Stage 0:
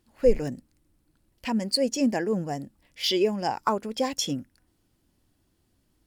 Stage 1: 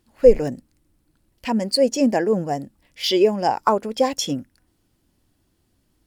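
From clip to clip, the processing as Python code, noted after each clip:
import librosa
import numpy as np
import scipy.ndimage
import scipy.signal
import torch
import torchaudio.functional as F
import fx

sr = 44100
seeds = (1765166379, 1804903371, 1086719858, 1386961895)

y = fx.dynamic_eq(x, sr, hz=600.0, q=0.78, threshold_db=-36.0, ratio=4.0, max_db=6)
y = F.gain(torch.from_numpy(y), 3.0).numpy()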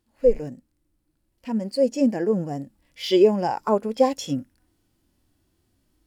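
y = fx.hpss(x, sr, part='percussive', gain_db=-12)
y = fx.rider(y, sr, range_db=10, speed_s=2.0)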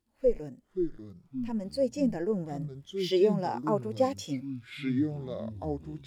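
y = fx.echo_pitch(x, sr, ms=428, semitones=-6, count=3, db_per_echo=-6.0)
y = F.gain(torch.from_numpy(y), -7.5).numpy()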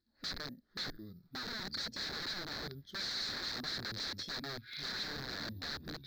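y = (np.kron(scipy.signal.resample_poly(x, 1, 3), np.eye(3)[0]) * 3)[:len(x)]
y = (np.mod(10.0 ** (24.5 / 20.0) * y + 1.0, 2.0) - 1.0) / 10.0 ** (24.5 / 20.0)
y = fx.curve_eq(y, sr, hz=(150.0, 220.0, 980.0, 1700.0, 2900.0, 4100.0, 9800.0), db=(0, 3, -6, 7, -10, 15, -26))
y = F.gain(torch.from_numpy(y), -5.0).numpy()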